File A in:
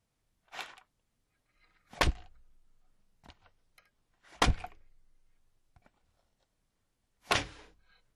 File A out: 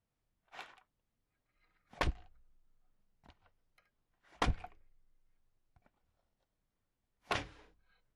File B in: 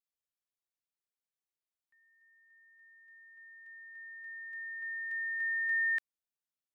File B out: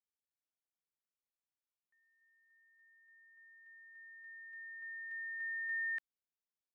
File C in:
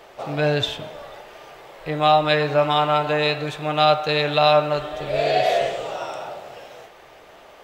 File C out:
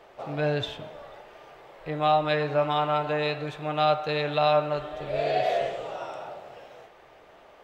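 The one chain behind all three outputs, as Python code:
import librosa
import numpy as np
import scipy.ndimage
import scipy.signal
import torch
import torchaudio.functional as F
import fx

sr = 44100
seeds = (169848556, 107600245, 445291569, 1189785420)

y = fx.high_shelf(x, sr, hz=3800.0, db=-9.0)
y = F.gain(torch.from_numpy(y), -5.5).numpy()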